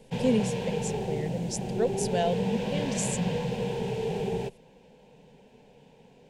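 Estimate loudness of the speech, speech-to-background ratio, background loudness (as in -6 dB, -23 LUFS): -31.5 LUFS, 0.0 dB, -31.5 LUFS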